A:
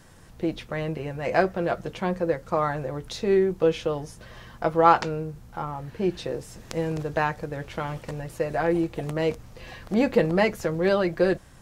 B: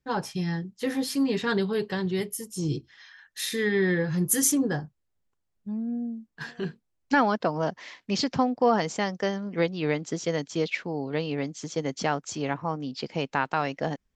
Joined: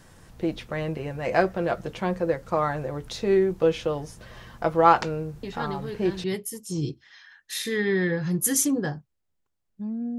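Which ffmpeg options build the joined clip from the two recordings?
ffmpeg -i cue0.wav -i cue1.wav -filter_complex "[1:a]asplit=2[link_01][link_02];[0:a]apad=whole_dur=10.18,atrim=end=10.18,atrim=end=6.242[link_03];[link_02]atrim=start=2.108:end=6.05[link_04];[link_01]atrim=start=1.3:end=2.11,asetpts=PTS-STARTPTS,volume=-8dB,afade=type=in:duration=0.004:curve=hsin,afade=type=out:start_time=0.806:duration=0.004:curve=hsin,adelay=5430[link_05];[link_03][link_04]acrossfade=duration=0.004:curve1=hsin:curve2=hsin[link_06];[link_06][link_05]amix=inputs=2:normalize=0" out.wav

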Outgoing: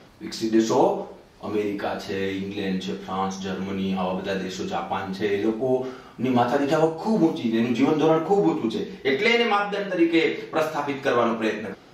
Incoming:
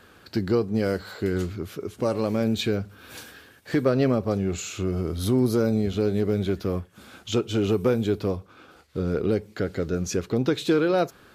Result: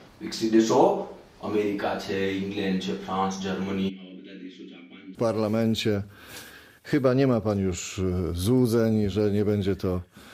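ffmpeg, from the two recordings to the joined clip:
ffmpeg -i cue0.wav -i cue1.wav -filter_complex "[0:a]asplit=3[link_01][link_02][link_03];[link_01]afade=type=out:start_time=3.88:duration=0.02[link_04];[link_02]asplit=3[link_05][link_06][link_07];[link_05]bandpass=frequency=270:width_type=q:width=8,volume=0dB[link_08];[link_06]bandpass=frequency=2290:width_type=q:width=8,volume=-6dB[link_09];[link_07]bandpass=frequency=3010:width_type=q:width=8,volume=-9dB[link_10];[link_08][link_09][link_10]amix=inputs=3:normalize=0,afade=type=in:start_time=3.88:duration=0.02,afade=type=out:start_time=5.15:duration=0.02[link_11];[link_03]afade=type=in:start_time=5.15:duration=0.02[link_12];[link_04][link_11][link_12]amix=inputs=3:normalize=0,apad=whole_dur=10.33,atrim=end=10.33,atrim=end=5.152[link_13];[1:a]atrim=start=1.958:end=7.14[link_14];[link_13][link_14]acrossfade=duration=0.004:curve1=hsin:curve2=hsin" out.wav

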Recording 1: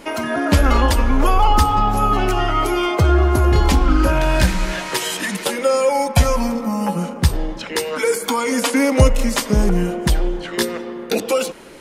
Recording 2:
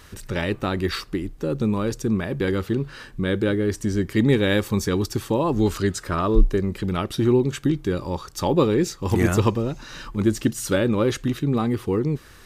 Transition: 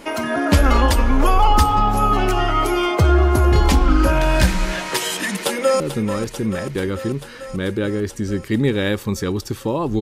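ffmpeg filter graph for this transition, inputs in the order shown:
ffmpeg -i cue0.wav -i cue1.wav -filter_complex "[0:a]apad=whole_dur=10.01,atrim=end=10.01,atrim=end=5.802[link_01];[1:a]atrim=start=1.448:end=5.66[link_02];[link_01][link_02]acrossfade=duration=0.004:curve1=hsin:curve2=hsin,asplit=2[link_03][link_04];[link_04]afade=type=in:start_time=5.19:duration=0.01,afade=type=out:start_time=5.8:duration=0.01,aecho=0:1:440|880|1320|1760|2200|2640|3080|3520|3960|4400|4840|5280:0.298538|0.223904|0.167928|0.125946|0.0944594|0.0708445|0.0531334|0.03985|0.0298875|0.0224157|0.0168117|0.0126088[link_05];[link_03][link_05]amix=inputs=2:normalize=0" out.wav

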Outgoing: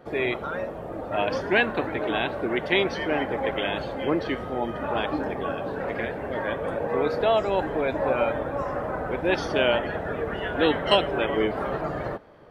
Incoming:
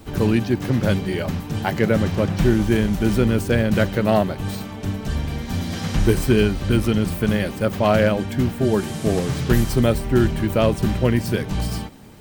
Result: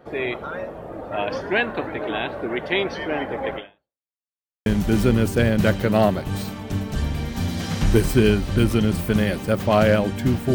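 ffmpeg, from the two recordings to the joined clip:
ffmpeg -i cue0.wav -i cue1.wav -filter_complex "[0:a]apad=whole_dur=10.54,atrim=end=10.54,asplit=2[link_01][link_02];[link_01]atrim=end=4.11,asetpts=PTS-STARTPTS,afade=type=out:start_time=3.56:duration=0.55:curve=exp[link_03];[link_02]atrim=start=4.11:end=4.66,asetpts=PTS-STARTPTS,volume=0[link_04];[1:a]atrim=start=2.79:end=8.67,asetpts=PTS-STARTPTS,afade=type=in:duration=0.004:curve=hsin[link_05];[link_03][link_04][link_05]concat=n=3:v=0:a=1" out.wav

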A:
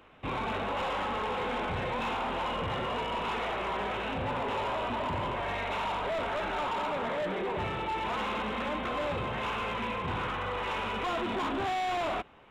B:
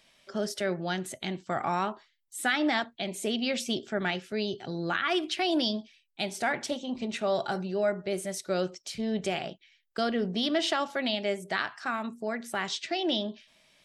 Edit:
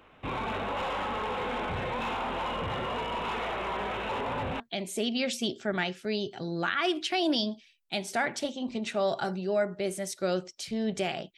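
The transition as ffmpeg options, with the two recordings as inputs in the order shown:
ffmpeg -i cue0.wav -i cue1.wav -filter_complex "[0:a]apad=whole_dur=11.37,atrim=end=11.37,asplit=2[link_01][link_02];[link_01]atrim=end=4.092[link_03];[link_02]atrim=start=4.088:end=4.602,asetpts=PTS-STARTPTS,areverse[link_04];[1:a]atrim=start=2.868:end=9.64[link_05];[link_03][link_04]acrossfade=duration=0.004:curve1=hsin:curve2=hsin[link_06];[link_06][link_05]acrossfade=duration=0.004:curve1=hsin:curve2=hsin" out.wav

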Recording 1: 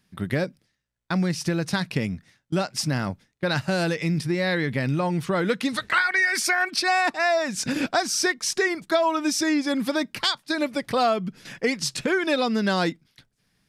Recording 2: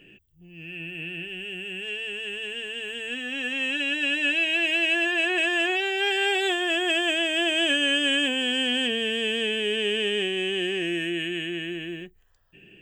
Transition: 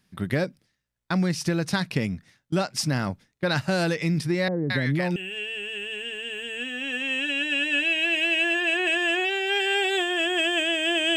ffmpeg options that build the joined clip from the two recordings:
ffmpeg -i cue0.wav -i cue1.wav -filter_complex "[0:a]asettb=1/sr,asplit=3[link_01][link_02][link_03];[link_01]atrim=end=4.484[link_04];[link_02]atrim=start=4.48:end=5.16,asetpts=PTS-STARTPTS,afade=type=in:duration=0.004:curve=qsin,afade=type=out:start_time=0.676:duration=0.004:curve=qsin,acrossover=split=780[link_05][link_06];[link_06]adelay=220[link_07];[link_05][link_07]amix=inputs=2:normalize=0,atrim=end_sample=29988[link_08];[link_03]atrim=start=5.156[link_09];[link_04][link_08]acrossfade=duration=0.004:curve1=hsin:curve2=qsin[link_10];[link_10][link_09]acrossfade=duration=0.004:curve1=qsin:curve2=hsin,apad=whole_dur=11.16,atrim=end=11.16,atrim=end=5.162[link_11];[1:a]atrim=start=1.668:end=7.67[link_12];[link_11][link_12]acrossfade=duration=0.004:curve1=hsin:curve2=hsin" out.wav

